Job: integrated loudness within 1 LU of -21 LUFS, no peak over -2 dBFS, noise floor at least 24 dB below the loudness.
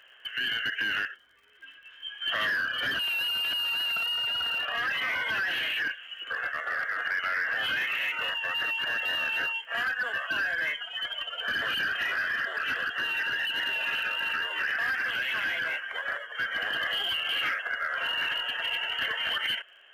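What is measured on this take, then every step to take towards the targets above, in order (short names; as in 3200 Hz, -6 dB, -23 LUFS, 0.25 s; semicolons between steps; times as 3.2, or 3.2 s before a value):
ticks 54/s; loudness -28.0 LUFS; peak -21.0 dBFS; loudness target -21.0 LUFS
-> de-click; gain +7 dB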